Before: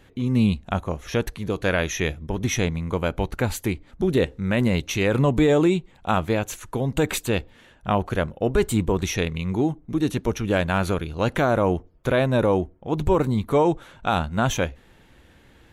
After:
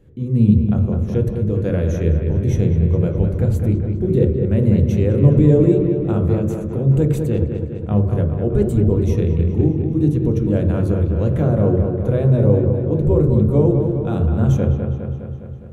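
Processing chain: FFT filter 500 Hz 0 dB, 840 Hz -13 dB, 3.9 kHz -16 dB, 8.1 kHz -11 dB; feedback echo behind a low-pass 205 ms, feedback 63%, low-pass 2.9 kHz, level -6 dB; on a send at -5.5 dB: reverberation RT60 0.60 s, pre-delay 3 ms

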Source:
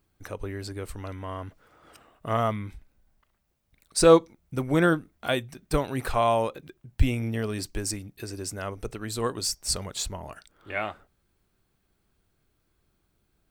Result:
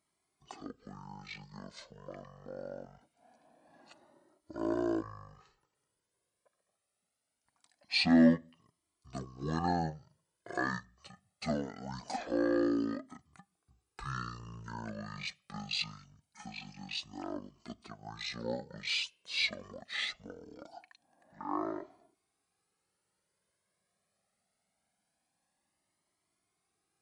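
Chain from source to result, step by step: high-pass 460 Hz 12 dB/octave; in parallel at -10.5 dB: hard clipper -17.5 dBFS, distortion -11 dB; on the sum: speed mistake 15 ips tape played at 7.5 ips; Shepard-style flanger rising 0.23 Hz; trim -3 dB

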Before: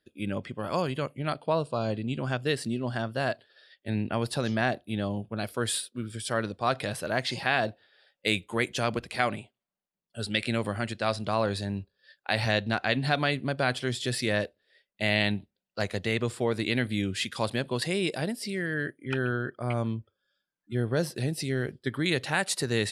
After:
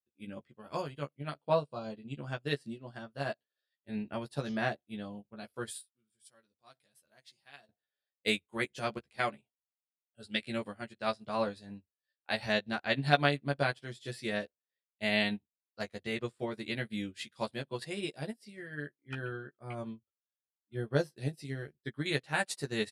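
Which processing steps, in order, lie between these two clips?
5.69–7.69 s: pre-emphasis filter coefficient 0.8; doubling 14 ms -3 dB; upward expansion 2.5:1, over -41 dBFS

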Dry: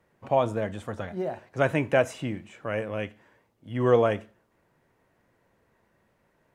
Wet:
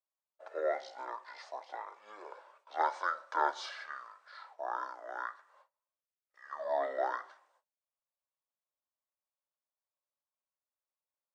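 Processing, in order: gate -52 dBFS, range -30 dB; elliptic high-pass 1 kHz, stop band 80 dB; speed mistake 78 rpm record played at 45 rpm

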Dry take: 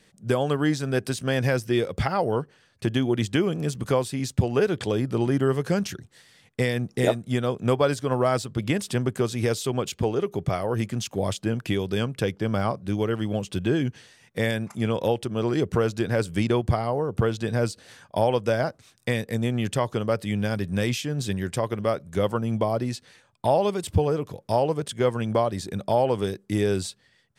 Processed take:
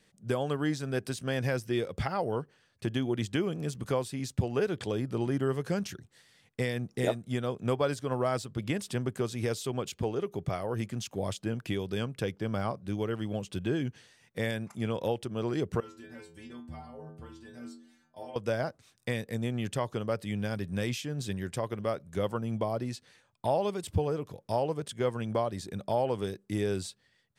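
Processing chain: 15.80–18.36 s: inharmonic resonator 77 Hz, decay 0.8 s, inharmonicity 0.008; trim -7 dB

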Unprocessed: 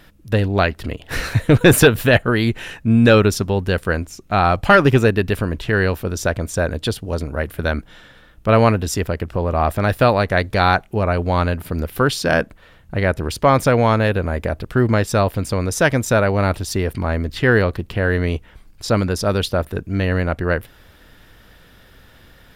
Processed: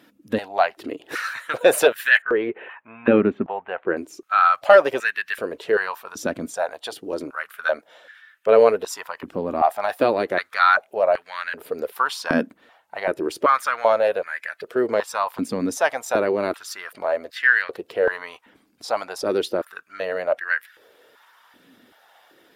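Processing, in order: coarse spectral quantiser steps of 15 dB; 2.22–3.97 s: inverse Chebyshev low-pass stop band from 4.9 kHz, stop band 40 dB; step-sequenced high-pass 2.6 Hz 260–1700 Hz; trim -6.5 dB

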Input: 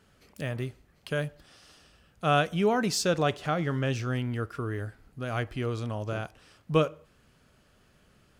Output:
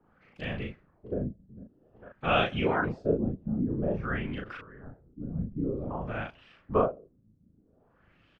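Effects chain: whisper effect; 0.58–1.18 s: echo throw 450 ms, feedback 55%, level -12.5 dB; LFO low-pass sine 0.51 Hz 200–3000 Hz; 4.40–4.87 s: compressor with a negative ratio -43 dBFS, ratio -1; doubling 37 ms -2.5 dB; trim -5 dB

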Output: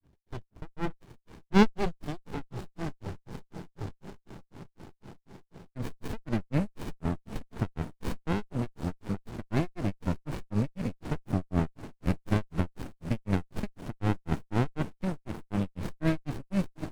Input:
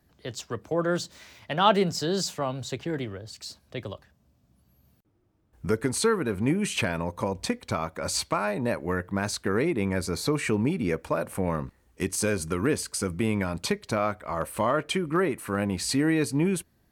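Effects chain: echo that smears into a reverb 768 ms, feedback 71%, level -13 dB; granulator 180 ms, grains 4 per s; sliding maximum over 65 samples; trim +1.5 dB

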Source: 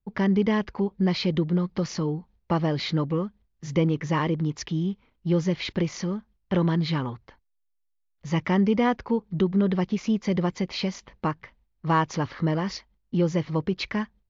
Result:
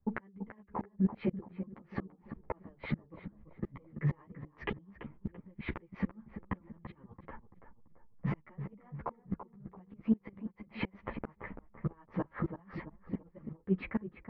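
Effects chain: fade out at the end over 1.21 s; low-pass 1.9 kHz 24 dB/octave; band-stop 1.5 kHz, Q 15; peak limiter -20 dBFS, peak gain reduction 8 dB; compression 10:1, threshold -31 dBFS, peak gain reduction 8.5 dB; level-controlled noise filter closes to 1.5 kHz, open at -31.5 dBFS; tremolo triangle 8.6 Hz, depth 75%; inverted gate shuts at -32 dBFS, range -33 dB; filtered feedback delay 336 ms, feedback 44%, low-pass 1.4 kHz, level -9 dB; three-phase chorus; trim +15 dB

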